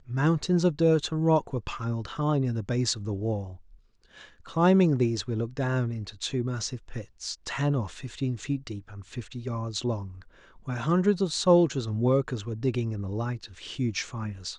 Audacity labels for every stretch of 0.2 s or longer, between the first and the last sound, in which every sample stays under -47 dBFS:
3.770000	4.040000	silence